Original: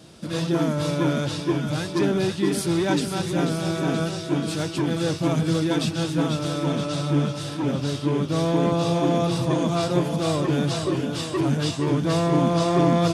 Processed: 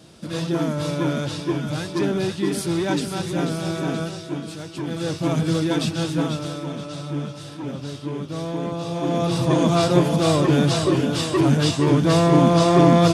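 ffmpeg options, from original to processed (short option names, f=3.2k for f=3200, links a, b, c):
-af "volume=20dB,afade=t=out:st=3.79:d=0.84:silence=0.398107,afade=t=in:st=4.63:d=0.74:silence=0.334965,afade=t=out:st=6.13:d=0.54:silence=0.446684,afade=t=in:st=8.9:d=0.77:silence=0.281838"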